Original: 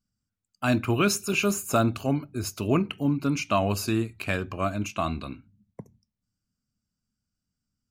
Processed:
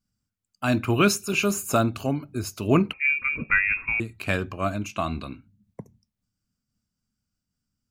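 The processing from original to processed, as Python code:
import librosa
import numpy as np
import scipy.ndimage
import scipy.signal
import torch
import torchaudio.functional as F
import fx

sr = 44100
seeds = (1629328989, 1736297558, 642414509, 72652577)

y = fx.freq_invert(x, sr, carrier_hz=2600, at=(2.93, 4.0))
y = fx.am_noise(y, sr, seeds[0], hz=5.7, depth_pct=60)
y = y * 10.0 ** (4.5 / 20.0)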